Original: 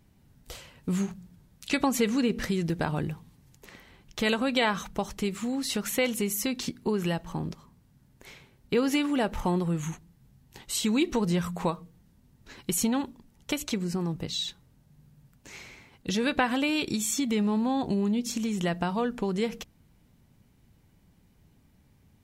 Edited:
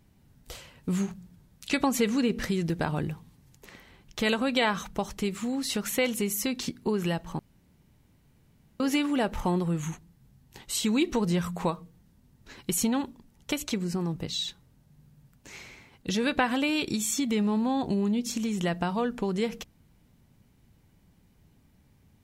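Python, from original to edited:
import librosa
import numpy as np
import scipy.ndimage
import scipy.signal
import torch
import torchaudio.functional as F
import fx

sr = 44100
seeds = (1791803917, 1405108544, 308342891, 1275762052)

y = fx.edit(x, sr, fx.room_tone_fill(start_s=7.39, length_s=1.41), tone=tone)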